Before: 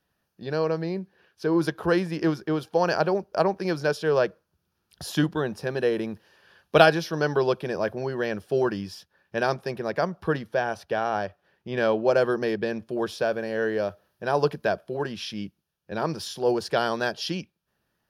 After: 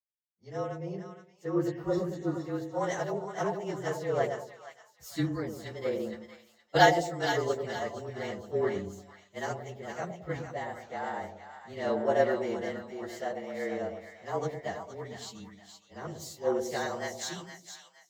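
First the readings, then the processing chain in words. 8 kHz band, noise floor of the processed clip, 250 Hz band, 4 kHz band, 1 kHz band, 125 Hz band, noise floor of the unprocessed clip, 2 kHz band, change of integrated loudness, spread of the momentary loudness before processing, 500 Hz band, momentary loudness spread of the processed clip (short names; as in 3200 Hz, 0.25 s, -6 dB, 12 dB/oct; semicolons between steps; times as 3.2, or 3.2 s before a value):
0.0 dB, -64 dBFS, -7.5 dB, -6.5 dB, -4.5 dB, -6.5 dB, -77 dBFS, -6.5 dB, -6.5 dB, 11 LU, -7.0 dB, 16 LU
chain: inharmonic rescaling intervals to 109%; spectral repair 1.7–2.37, 1500–3400 Hz both; on a send: split-band echo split 750 Hz, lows 0.109 s, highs 0.467 s, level -5 dB; on the sum: three-band expander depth 70%; gain -7 dB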